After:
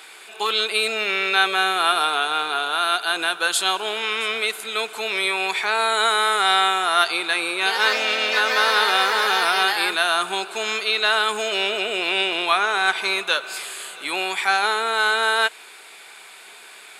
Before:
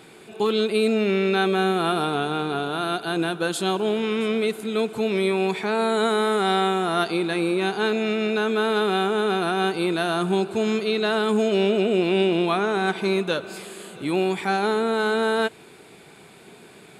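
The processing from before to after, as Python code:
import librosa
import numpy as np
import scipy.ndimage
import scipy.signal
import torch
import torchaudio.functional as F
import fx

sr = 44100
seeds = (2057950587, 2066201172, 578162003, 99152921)

y = fx.echo_pitch(x, sr, ms=96, semitones=3, count=3, db_per_echo=-6.0, at=(7.56, 10.29))
y = scipy.signal.sosfilt(scipy.signal.butter(2, 1100.0, 'highpass', fs=sr, output='sos'), y)
y = y * 10.0 ** (9.0 / 20.0)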